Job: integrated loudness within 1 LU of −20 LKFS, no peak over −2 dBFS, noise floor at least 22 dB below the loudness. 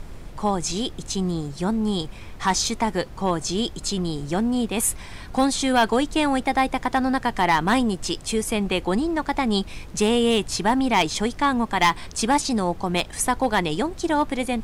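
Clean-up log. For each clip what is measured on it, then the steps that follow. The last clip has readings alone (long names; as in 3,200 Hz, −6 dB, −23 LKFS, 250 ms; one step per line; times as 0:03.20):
share of clipped samples 0.3%; peaks flattened at −11.5 dBFS; background noise floor −39 dBFS; target noise floor −45 dBFS; integrated loudness −23.0 LKFS; sample peak −11.5 dBFS; target loudness −20.0 LKFS
→ clipped peaks rebuilt −11.5 dBFS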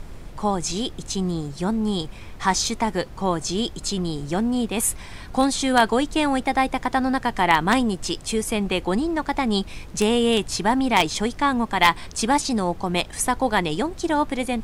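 share of clipped samples 0.0%; background noise floor −39 dBFS; target noise floor −45 dBFS
→ noise reduction from a noise print 6 dB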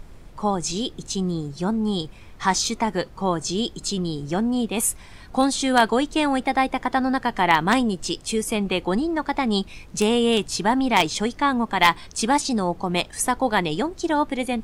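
background noise floor −44 dBFS; target noise floor −45 dBFS
→ noise reduction from a noise print 6 dB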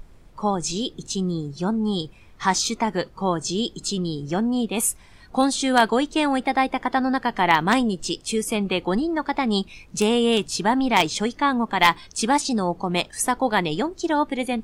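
background noise floor −49 dBFS; integrated loudness −23.0 LKFS; sample peak −2.0 dBFS; target loudness −20.0 LKFS
→ level +3 dB
brickwall limiter −2 dBFS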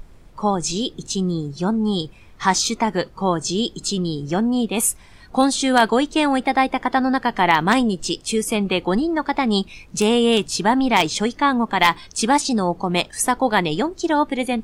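integrated loudness −20.0 LKFS; sample peak −2.0 dBFS; background noise floor −46 dBFS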